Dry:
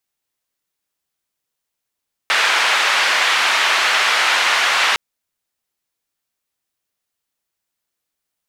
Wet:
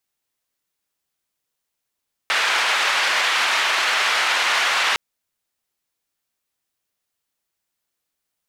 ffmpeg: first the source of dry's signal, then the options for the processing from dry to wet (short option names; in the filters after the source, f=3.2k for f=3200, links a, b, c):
-f lavfi -i "anoisesrc=c=white:d=2.66:r=44100:seed=1,highpass=f=1000,lowpass=f=2500,volume=-0dB"
-af "alimiter=limit=-11dB:level=0:latency=1:release=21"